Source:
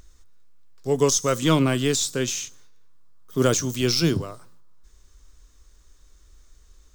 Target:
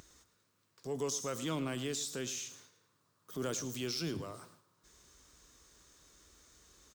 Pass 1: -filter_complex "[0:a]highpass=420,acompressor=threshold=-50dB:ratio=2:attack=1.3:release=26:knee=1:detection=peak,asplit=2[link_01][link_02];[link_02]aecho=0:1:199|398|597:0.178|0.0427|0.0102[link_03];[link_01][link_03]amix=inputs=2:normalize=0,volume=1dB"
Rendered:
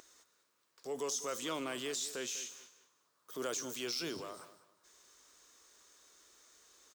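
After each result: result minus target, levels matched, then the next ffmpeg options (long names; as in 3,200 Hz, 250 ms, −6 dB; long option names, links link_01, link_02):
echo 90 ms late; 125 Hz band −13.0 dB
-filter_complex "[0:a]highpass=420,acompressor=threshold=-50dB:ratio=2:attack=1.3:release=26:knee=1:detection=peak,asplit=2[link_01][link_02];[link_02]aecho=0:1:109|218|327:0.178|0.0427|0.0102[link_03];[link_01][link_03]amix=inputs=2:normalize=0,volume=1dB"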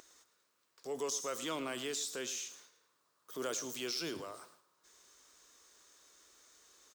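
125 Hz band −13.5 dB
-filter_complex "[0:a]highpass=130,acompressor=threshold=-50dB:ratio=2:attack=1.3:release=26:knee=1:detection=peak,asplit=2[link_01][link_02];[link_02]aecho=0:1:109|218|327:0.178|0.0427|0.0102[link_03];[link_01][link_03]amix=inputs=2:normalize=0,volume=1dB"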